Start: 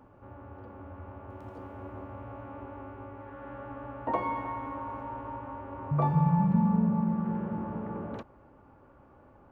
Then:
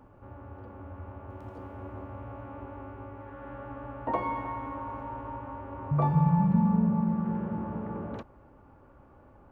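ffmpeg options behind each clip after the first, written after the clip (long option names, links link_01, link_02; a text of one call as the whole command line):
ffmpeg -i in.wav -af "lowshelf=frequency=70:gain=7.5" out.wav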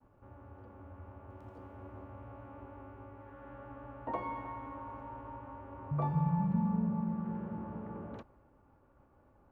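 ffmpeg -i in.wav -af "agate=range=-33dB:threshold=-52dB:ratio=3:detection=peak,volume=-7.5dB" out.wav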